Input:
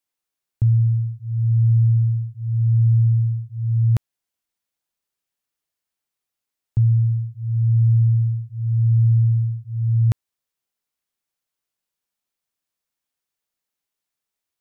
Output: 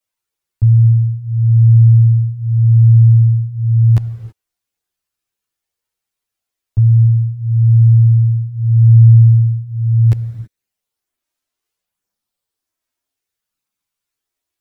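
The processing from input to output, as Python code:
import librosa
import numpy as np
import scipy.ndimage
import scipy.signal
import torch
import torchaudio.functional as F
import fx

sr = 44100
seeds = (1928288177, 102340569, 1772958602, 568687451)

y = fx.rev_gated(x, sr, seeds[0], gate_ms=350, shape='flat', drr_db=12.0)
y = fx.chorus_voices(y, sr, voices=4, hz=0.32, base_ms=10, depth_ms=1.6, mix_pct=55)
y = F.gain(torch.from_numpy(y), 6.0).numpy()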